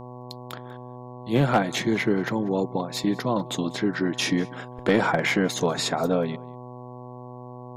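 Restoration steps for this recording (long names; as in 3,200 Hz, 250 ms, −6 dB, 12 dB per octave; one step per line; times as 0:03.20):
clipped peaks rebuilt −11.5 dBFS
hum removal 124.1 Hz, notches 9
echo removal 192 ms −23.5 dB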